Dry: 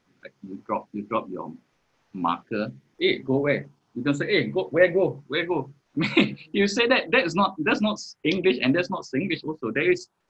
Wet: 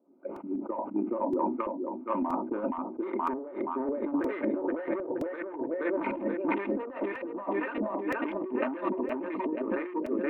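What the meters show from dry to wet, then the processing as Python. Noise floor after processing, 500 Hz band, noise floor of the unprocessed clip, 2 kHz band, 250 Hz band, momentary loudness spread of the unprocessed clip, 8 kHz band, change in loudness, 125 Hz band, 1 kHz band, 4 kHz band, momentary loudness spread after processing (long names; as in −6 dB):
−42 dBFS, −7.0 dB, −70 dBFS, −14.0 dB, −5.0 dB, 11 LU, can't be measured, −8.0 dB, −17.5 dB, −4.0 dB, below −25 dB, 5 LU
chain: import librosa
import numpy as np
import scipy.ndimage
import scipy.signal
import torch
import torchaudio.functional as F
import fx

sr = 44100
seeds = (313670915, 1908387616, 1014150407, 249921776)

y = fx.wiener(x, sr, points=25)
y = fx.echo_feedback(y, sr, ms=474, feedback_pct=43, wet_db=-6.5)
y = 10.0 ** (-21.5 / 20.0) * np.tanh(y / 10.0 ** (-21.5 / 20.0))
y = scipy.signal.sosfilt(scipy.signal.butter(4, 270.0, 'highpass', fs=sr, output='sos'), y)
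y = fx.filter_lfo_lowpass(y, sr, shape='saw_up', hz=1.8, low_hz=490.0, high_hz=2200.0, q=0.95)
y = fx.dynamic_eq(y, sr, hz=1000.0, q=1.7, threshold_db=-46.0, ratio=4.0, max_db=6)
y = fx.over_compress(y, sr, threshold_db=-33.0, ratio=-0.5)
y = fx.high_shelf_res(y, sr, hz=3300.0, db=-10.5, q=1.5)
y = y + 0.47 * np.pad(y, (int(3.3 * sr / 1000.0), 0))[:len(y)]
y = fx.buffer_crackle(y, sr, first_s=0.36, period_s=0.97, block=128, kind='repeat')
y = fx.sustainer(y, sr, db_per_s=73.0)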